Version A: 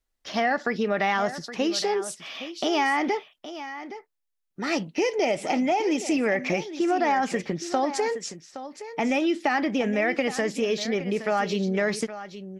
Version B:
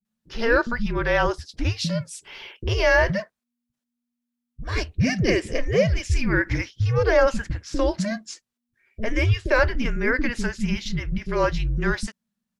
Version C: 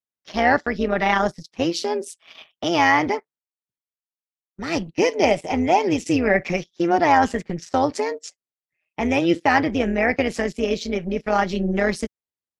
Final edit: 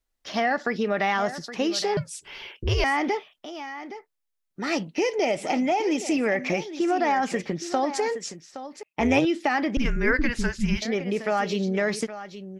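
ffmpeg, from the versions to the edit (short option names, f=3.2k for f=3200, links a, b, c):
-filter_complex "[1:a]asplit=2[a][b];[0:a]asplit=4[c][d][e][f];[c]atrim=end=1.972[g];[a]atrim=start=1.968:end=2.842[h];[d]atrim=start=2.838:end=8.832[i];[2:a]atrim=start=8.828:end=9.252[j];[e]atrim=start=9.248:end=9.772[k];[b]atrim=start=9.768:end=10.822[l];[f]atrim=start=10.818[m];[g][h]acrossfade=d=0.004:c1=hsin:c2=hsin[n];[n][i]acrossfade=d=0.004:c1=hsin:c2=hsin[o];[o][j]acrossfade=d=0.004:c1=hsin:c2=hsin[p];[p][k]acrossfade=d=0.004:c1=hsin:c2=hsin[q];[q][l]acrossfade=d=0.004:c1=hsin:c2=hsin[r];[r][m]acrossfade=d=0.004:c1=hsin:c2=hsin"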